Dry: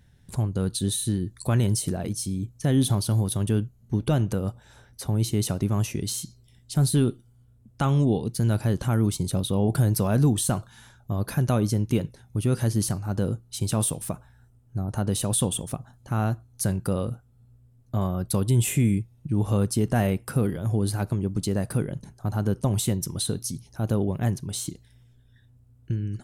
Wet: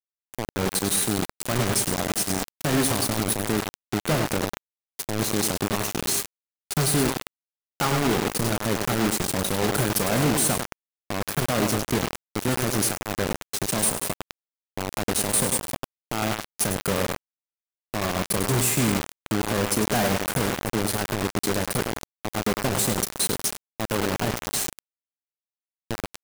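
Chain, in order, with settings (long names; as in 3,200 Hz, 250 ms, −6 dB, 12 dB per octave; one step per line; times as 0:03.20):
low-shelf EQ 280 Hz −8.5 dB
in parallel at −2 dB: downward compressor 16 to 1, threshold −35 dBFS, peak gain reduction 14.5 dB
on the sum: parametric band 3,300 Hz −10.5 dB 0.35 octaves
on a send: tape delay 101 ms, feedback 69%, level −6 dB, low-pass 5,100 Hz
on the sum: hum with harmonics 400 Hz, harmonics 21, −43 dBFS −5 dB per octave
high-pass filter 120 Hz 12 dB per octave
double-tracking delay 32 ms −13 dB
automatic gain control gain up to 3 dB
soft clipping −13.5 dBFS, distortion −20 dB
bit reduction 4 bits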